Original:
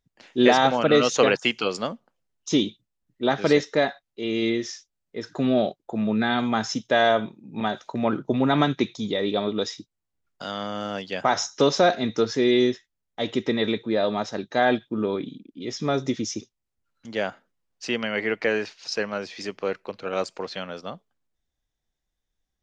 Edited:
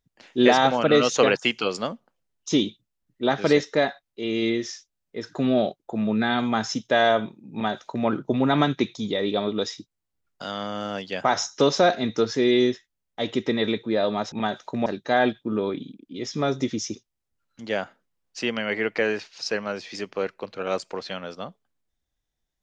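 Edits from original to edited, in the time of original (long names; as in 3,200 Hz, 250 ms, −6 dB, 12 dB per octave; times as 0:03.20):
0:07.53–0:08.07: duplicate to 0:14.32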